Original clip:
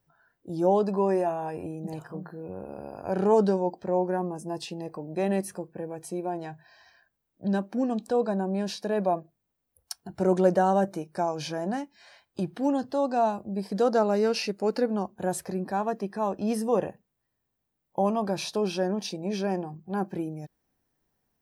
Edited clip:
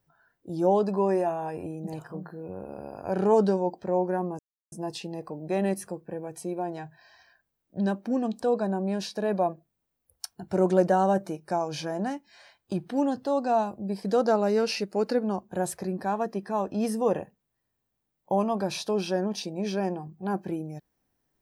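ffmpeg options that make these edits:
ffmpeg -i in.wav -filter_complex "[0:a]asplit=2[link_01][link_02];[link_01]atrim=end=4.39,asetpts=PTS-STARTPTS,afade=type=out:start_time=4.386:duration=0.004:curve=hsin,apad=pad_dur=0.33[link_03];[link_02]atrim=start=4.39,asetpts=PTS-STARTPTS,afade=type=in:duration=0.004:curve=hsin[link_04];[link_03][link_04]concat=n=2:v=0:a=1" out.wav

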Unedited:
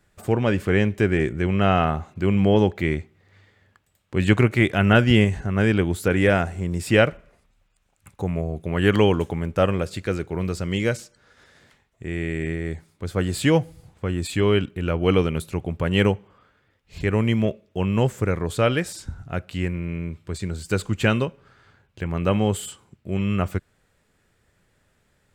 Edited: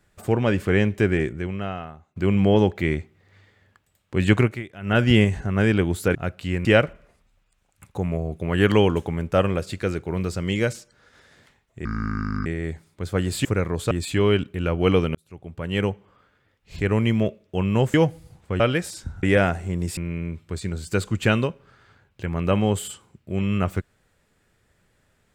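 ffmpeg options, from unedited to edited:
ffmpeg -i in.wav -filter_complex "[0:a]asplit=15[link_01][link_02][link_03][link_04][link_05][link_06][link_07][link_08][link_09][link_10][link_11][link_12][link_13][link_14][link_15];[link_01]atrim=end=2.16,asetpts=PTS-STARTPTS,afade=type=out:start_time=1.11:duration=1.05:curve=qua:silence=0.0841395[link_16];[link_02]atrim=start=2.16:end=4.63,asetpts=PTS-STARTPTS,afade=type=in:duration=0.004:curve=hsin:silence=0.0841395,afade=type=out:start_time=2.23:duration=0.24:silence=0.112202[link_17];[link_03]atrim=start=4.63:end=4.81,asetpts=PTS-STARTPTS,volume=-19dB[link_18];[link_04]atrim=start=4.81:end=6.152,asetpts=PTS-STARTPTS,afade=type=in:duration=0.24:silence=0.112202[link_19];[link_05]atrim=start=19.248:end=19.752[link_20];[link_06]atrim=start=6.888:end=12.094[link_21];[link_07]atrim=start=12.09:end=12.48,asetpts=PTS-STARTPTS,asetrate=28224,aresample=44100,atrim=end_sample=26873,asetpts=PTS-STARTPTS[link_22];[link_08]atrim=start=12.476:end=13.472[link_23];[link_09]atrim=start=18.158:end=18.622[link_24];[link_10]atrim=start=14.128:end=15.37,asetpts=PTS-STARTPTS,afade=type=out:start_time=1.238:duration=0.004:curve=hsin[link_25];[link_11]atrim=start=15.37:end=18.162,asetpts=PTS-STARTPTS,afade=type=in:duration=1.66:curve=qsin[link_26];[link_12]atrim=start=13.468:end=14.132[link_27];[link_13]atrim=start=18.618:end=19.252[link_28];[link_14]atrim=start=6.148:end=6.892[link_29];[link_15]atrim=start=19.748[link_30];[link_16][link_17][link_18][link_19]concat=n=4:v=0:a=1[link_31];[link_31][link_20]acrossfade=duration=0.004:curve1=hsin:curve2=hsin[link_32];[link_32][link_21]acrossfade=duration=0.004:curve1=hsin:curve2=hsin[link_33];[link_33][link_22]acrossfade=duration=0.004:curve1=hsin:curve2=hsin[link_34];[link_34][link_23]acrossfade=duration=0.004:curve1=hsin:curve2=hsin[link_35];[link_35][link_24]acrossfade=duration=0.004:curve1=hsin:curve2=hsin[link_36];[link_25][link_26]concat=n=2:v=0:a=1[link_37];[link_36][link_37]acrossfade=duration=0.004:curve1=hsin:curve2=hsin[link_38];[link_38][link_27]acrossfade=duration=0.004:curve1=hsin:curve2=hsin[link_39];[link_39][link_28]acrossfade=duration=0.004:curve1=hsin:curve2=hsin[link_40];[link_40][link_29]acrossfade=duration=0.004:curve1=hsin:curve2=hsin[link_41];[link_41][link_30]acrossfade=duration=0.004:curve1=hsin:curve2=hsin" out.wav

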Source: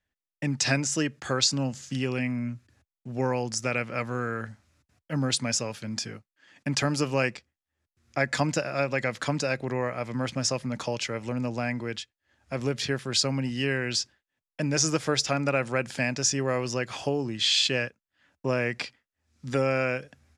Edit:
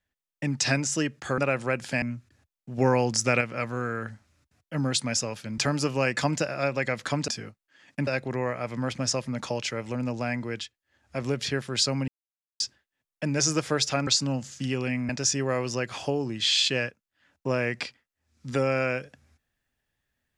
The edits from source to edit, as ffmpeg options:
ffmpeg -i in.wav -filter_complex "[0:a]asplit=13[link_01][link_02][link_03][link_04][link_05][link_06][link_07][link_08][link_09][link_10][link_11][link_12][link_13];[link_01]atrim=end=1.382[link_14];[link_02]atrim=start=15.438:end=16.082[link_15];[link_03]atrim=start=2.398:end=3.162[link_16];[link_04]atrim=start=3.158:end=3.792,asetpts=PTS-STARTPTS,volume=5dB[link_17];[link_05]atrim=start=3.788:end=5.962[link_18];[link_06]atrim=start=6.748:end=7.342[link_19];[link_07]atrim=start=8.328:end=9.442[link_20];[link_08]atrim=start=5.958:end=6.752[link_21];[link_09]atrim=start=9.438:end=13.45,asetpts=PTS-STARTPTS,afade=type=out:start_time=4.008:duration=0.004:curve=hsin[link_22];[link_10]atrim=start=13.45:end=13.97,asetpts=PTS-STARTPTS,volume=0[link_23];[link_11]atrim=start=13.97:end=15.442,asetpts=PTS-STARTPTS,afade=type=in:duration=0.004:curve=hsin[link_24];[link_12]atrim=start=1.378:end=2.402[link_25];[link_13]atrim=start=16.078[link_26];[link_14][link_15]acrossfade=duration=0.004:curve1=hsin:curve2=hsin[link_27];[link_27][link_16]acrossfade=duration=0.004:curve1=hsin:curve2=hsin[link_28];[link_28][link_17]acrossfade=duration=0.004:curve1=hsin:curve2=hsin[link_29];[link_29][link_18]acrossfade=duration=0.004:curve1=hsin:curve2=hsin[link_30];[link_30][link_19]acrossfade=duration=0.004:curve1=hsin:curve2=hsin[link_31];[link_31][link_20]acrossfade=duration=0.004:curve1=hsin:curve2=hsin[link_32];[link_32][link_21]acrossfade=duration=0.004:curve1=hsin:curve2=hsin[link_33];[link_22][link_23][link_24]concat=n=3:v=0:a=1[link_34];[link_33][link_34]acrossfade=duration=0.004:curve1=hsin:curve2=hsin[link_35];[link_35][link_25]acrossfade=duration=0.004:curve1=hsin:curve2=hsin[link_36];[link_36][link_26]acrossfade=duration=0.004:curve1=hsin:curve2=hsin" out.wav

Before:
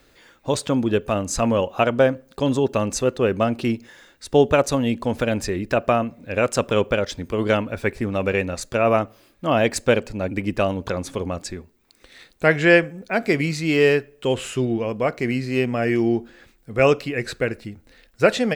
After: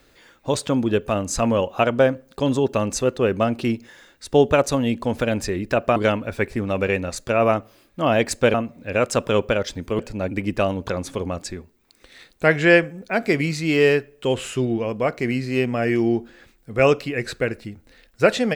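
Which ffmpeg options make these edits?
ffmpeg -i in.wav -filter_complex "[0:a]asplit=4[link_01][link_02][link_03][link_04];[link_01]atrim=end=5.962[link_05];[link_02]atrim=start=7.408:end=9.992[link_06];[link_03]atrim=start=5.958:end=7.412[link_07];[link_04]atrim=start=9.988[link_08];[link_05][link_06]acrossfade=duration=0.004:curve1=hsin:curve2=hsin[link_09];[link_09][link_07]acrossfade=duration=0.004:curve1=hsin:curve2=hsin[link_10];[link_10][link_08]acrossfade=duration=0.004:curve1=hsin:curve2=hsin" out.wav

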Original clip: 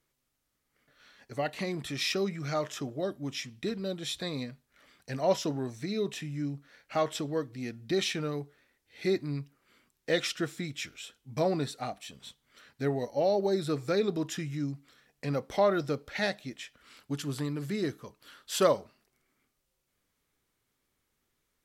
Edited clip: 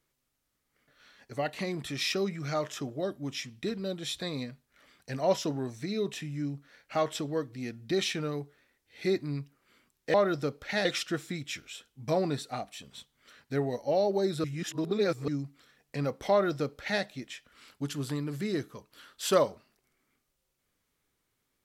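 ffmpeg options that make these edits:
ffmpeg -i in.wav -filter_complex "[0:a]asplit=5[link_01][link_02][link_03][link_04][link_05];[link_01]atrim=end=10.142[link_06];[link_02]atrim=start=15.598:end=16.312[link_07];[link_03]atrim=start=10.138:end=13.732[link_08];[link_04]atrim=start=13.728:end=14.572,asetpts=PTS-STARTPTS,areverse[link_09];[link_05]atrim=start=14.568[link_10];[link_06][link_07]acrossfade=duration=0.004:curve1=hsin:curve2=hsin[link_11];[link_11][link_08]acrossfade=duration=0.004:curve1=hsin:curve2=hsin[link_12];[link_12][link_09]acrossfade=duration=0.004:curve1=hsin:curve2=hsin[link_13];[link_13][link_10]acrossfade=duration=0.004:curve1=hsin:curve2=hsin" out.wav

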